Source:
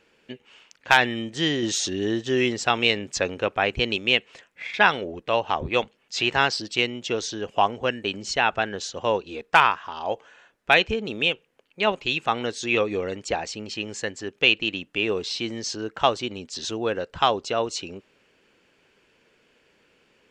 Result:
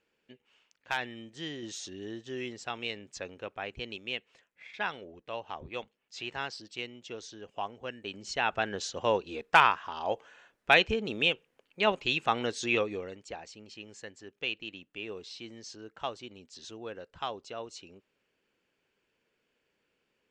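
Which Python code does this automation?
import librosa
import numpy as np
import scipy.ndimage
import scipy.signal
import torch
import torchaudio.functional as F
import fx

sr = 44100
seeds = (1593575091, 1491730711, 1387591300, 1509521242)

y = fx.gain(x, sr, db=fx.line((7.8, -15.5), (8.75, -4.0), (12.68, -4.0), (13.24, -15.5)))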